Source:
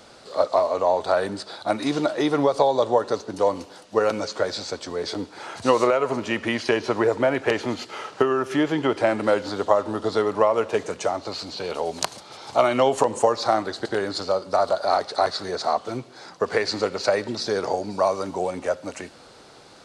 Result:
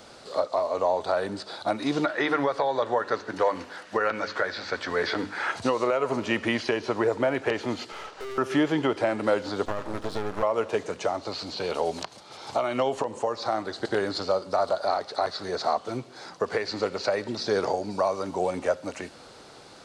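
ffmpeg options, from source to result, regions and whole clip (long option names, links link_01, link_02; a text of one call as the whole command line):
ffmpeg -i in.wav -filter_complex "[0:a]asettb=1/sr,asplit=3[link_01][link_02][link_03];[link_01]atrim=end=2.044[link_04];[link_02]atrim=start=2.04:end=5.52,asetpts=PTS-STARTPTS,afade=type=in:duration=0.004:curve=qsin,afade=type=out:start_time=3.476:duration=0.004:curve=qsin,acrossover=split=5500[link_05][link_06];[link_06]acompressor=threshold=-54dB:ratio=4:attack=1:release=60[link_07];[link_05][link_07]amix=inputs=2:normalize=0,equalizer=frequency=1700:width_type=o:width=1.1:gain=14,bandreject=frequency=50:width_type=h:width=6,bandreject=frequency=100:width_type=h:width=6,bandreject=frequency=150:width_type=h:width=6,bandreject=frequency=200:width_type=h:width=6,bandreject=frequency=250:width_type=h:width=6,bandreject=frequency=300:width_type=h:width=6,bandreject=frequency=350:width_type=h:width=6[link_08];[link_03]atrim=start=5.516[link_09];[link_04][link_08]acrossfade=duration=0.004:curve1=hsin:curve2=qsin[link_10];[link_10][link_09]acrossfade=duration=0.004:curve1=qsin:curve2=hsin,asettb=1/sr,asplit=3[link_11][link_12][link_13];[link_11]atrim=end=7.924[link_14];[link_12]atrim=start=7.92:end=8.38,asetpts=PTS-STARTPTS,afade=type=in:duration=0.004:curve=qsin,afade=type=out:start_time=0.456:duration=0.004:curve=qsin,highpass=300,lowpass=6900,aeval=exprs='(tanh(56.2*val(0)+0.5)-tanh(0.5))/56.2':channel_layout=same[link_15];[link_13]atrim=start=8.376[link_16];[link_14][link_15]acrossfade=duration=0.004:curve1=hsin:curve2=qsin[link_17];[link_17][link_16]acrossfade=duration=0.004:curve1=qsin:curve2=hsin,asettb=1/sr,asplit=3[link_18][link_19][link_20];[link_18]atrim=end=9.654[link_21];[link_19]atrim=start=9.65:end=10.43,asetpts=PTS-STARTPTS,afade=type=in:duration=0.004:curve=qsin,afade=type=out:start_time=0.776:duration=0.004:curve=qsin,aeval=exprs='max(val(0),0)':channel_layout=same,acompressor=threshold=-23dB:ratio=6:attack=3.2:release=140:knee=1:detection=peak[link_22];[link_20]atrim=start=10.426[link_23];[link_21][link_22]acrossfade=duration=0.004:curve1=hsin:curve2=qsin[link_24];[link_24][link_23]acrossfade=duration=0.004:curve1=qsin:curve2=hsin,acrossover=split=5600[link_25][link_26];[link_26]acompressor=threshold=-47dB:ratio=4:attack=1:release=60[link_27];[link_25][link_27]amix=inputs=2:normalize=0,alimiter=limit=-13.5dB:level=0:latency=1:release=483" out.wav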